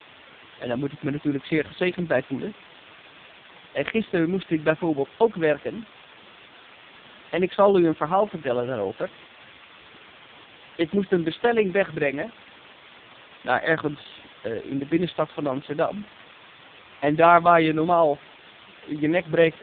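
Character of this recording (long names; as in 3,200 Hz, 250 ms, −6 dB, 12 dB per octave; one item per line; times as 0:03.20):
a quantiser's noise floor 6 bits, dither triangular
AMR narrowband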